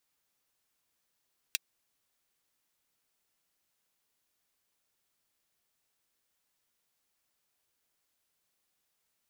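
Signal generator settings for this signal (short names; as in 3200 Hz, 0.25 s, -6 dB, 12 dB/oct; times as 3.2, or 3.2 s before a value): closed hi-hat, high-pass 2600 Hz, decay 0.03 s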